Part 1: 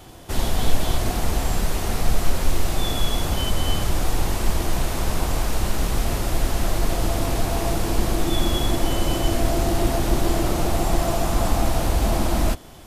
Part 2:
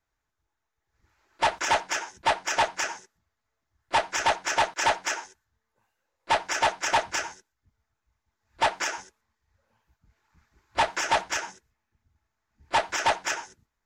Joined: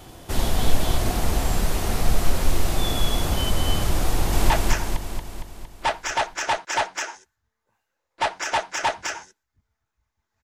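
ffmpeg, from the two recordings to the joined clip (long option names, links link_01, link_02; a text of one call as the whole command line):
ffmpeg -i cue0.wav -i cue1.wav -filter_complex "[0:a]apad=whole_dur=10.43,atrim=end=10.43,atrim=end=4.502[link_01];[1:a]atrim=start=2.588:end=8.52[link_02];[link_01][link_02]acrossfade=duration=0.004:curve1=hsin:curve2=hsin,asplit=2[link_03][link_04];[link_04]afade=type=in:start_time=4.09:duration=0.01,afade=type=out:start_time=4.5:duration=0.01,aecho=0:1:230|460|690|920|1150|1380|1610|1840|2070:0.891251|0.534751|0.32085|0.19251|0.115506|0.0693037|0.0415822|0.0249493|0.0149696[link_05];[link_03][link_05]amix=inputs=2:normalize=0" out.wav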